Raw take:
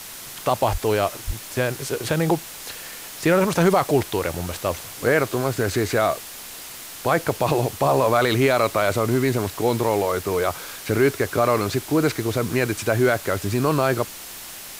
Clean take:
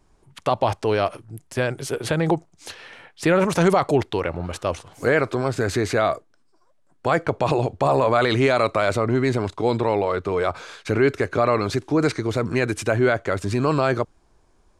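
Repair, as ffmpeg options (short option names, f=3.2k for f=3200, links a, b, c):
-filter_complex "[0:a]asplit=3[a][b][c];[a]afade=t=out:st=0.71:d=0.02[d];[b]highpass=f=140:w=0.5412,highpass=f=140:w=1.3066,afade=t=in:st=0.71:d=0.02,afade=t=out:st=0.83:d=0.02[e];[c]afade=t=in:st=0.83:d=0.02[f];[d][e][f]amix=inputs=3:normalize=0,asplit=3[g][h][i];[g]afade=t=out:st=1.26:d=0.02[j];[h]highpass=f=140:w=0.5412,highpass=f=140:w=1.3066,afade=t=in:st=1.26:d=0.02,afade=t=out:st=1.38:d=0.02[k];[i]afade=t=in:st=1.38:d=0.02[l];[j][k][l]amix=inputs=3:normalize=0,afwtdn=0.016"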